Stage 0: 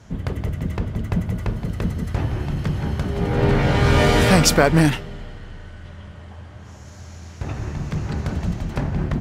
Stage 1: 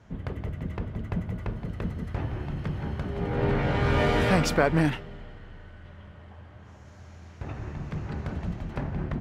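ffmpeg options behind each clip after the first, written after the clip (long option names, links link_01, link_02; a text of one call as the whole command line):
ffmpeg -i in.wav -af "bass=frequency=250:gain=-2,treble=frequency=4000:gain=-11,volume=-6.5dB" out.wav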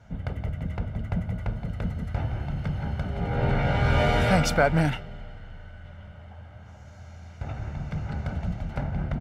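ffmpeg -i in.wav -af "aecho=1:1:1.4:0.55" out.wav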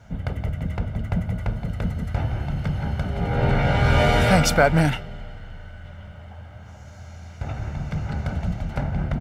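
ffmpeg -i in.wav -af "highshelf=frequency=5900:gain=6,volume=4dB" out.wav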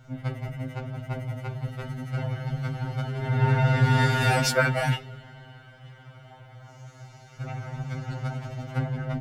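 ffmpeg -i in.wav -af "afftfilt=real='re*2.45*eq(mod(b,6),0)':imag='im*2.45*eq(mod(b,6),0)':win_size=2048:overlap=0.75" out.wav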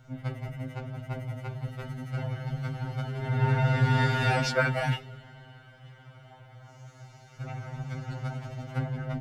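ffmpeg -i in.wav -filter_complex "[0:a]acrossover=split=5900[link_01][link_02];[link_02]acompressor=threshold=-53dB:ratio=4:attack=1:release=60[link_03];[link_01][link_03]amix=inputs=2:normalize=0,volume=-3dB" out.wav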